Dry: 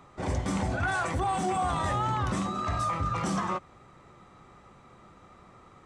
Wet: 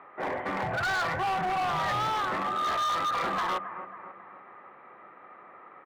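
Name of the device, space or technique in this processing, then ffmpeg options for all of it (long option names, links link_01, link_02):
megaphone: -filter_complex "[0:a]asettb=1/sr,asplit=3[link_01][link_02][link_03];[link_01]atrim=end=0.634[link_04];[link_02]atrim=start=0.63:end=2.08,asetpts=PTS-STARTPTS,afade=type=in:duration=0.004:curve=qsin,afade=type=out:start_time=1.446:duration=0.004:curve=qsin,lowshelf=frequency=190:width_type=q:width=3:gain=10[link_05];[link_03]atrim=start=2.076[link_06];[link_04][link_05]acrossfade=duration=0.004:curve1=hsin:curve2=qsin[link_07];[link_07][link_06]acrossfade=duration=0.004:curve1=qsin:curve2=hsin,asplit=3[link_08][link_09][link_10];[link_08]afade=type=out:start_time=2.62:duration=0.02[link_11];[link_09]asplit=2[link_12][link_13];[link_13]adelay=43,volume=-2.5dB[link_14];[link_12][link_14]amix=inputs=2:normalize=0,afade=type=in:start_time=2.62:duration=0.02,afade=type=out:start_time=3.28:duration=0.02[link_15];[link_10]afade=type=in:start_time=3.28:duration=0.02[link_16];[link_11][link_15][link_16]amix=inputs=3:normalize=0,highpass=460,lowpass=2900,lowpass=frequency=2500:width=0.5412,lowpass=frequency=2500:width=1.3066,equalizer=frequency=1800:width_type=o:width=0.42:gain=5,asplit=2[link_17][link_18];[link_18]adelay=272,lowpass=frequency=4400:poles=1,volume=-14dB,asplit=2[link_19][link_20];[link_20]adelay=272,lowpass=frequency=4400:poles=1,volume=0.51,asplit=2[link_21][link_22];[link_22]adelay=272,lowpass=frequency=4400:poles=1,volume=0.51,asplit=2[link_23][link_24];[link_24]adelay=272,lowpass=frequency=4400:poles=1,volume=0.51,asplit=2[link_25][link_26];[link_26]adelay=272,lowpass=frequency=4400:poles=1,volume=0.51[link_27];[link_17][link_19][link_21][link_23][link_25][link_27]amix=inputs=6:normalize=0,asoftclip=type=hard:threshold=-31.5dB,volume=5.5dB"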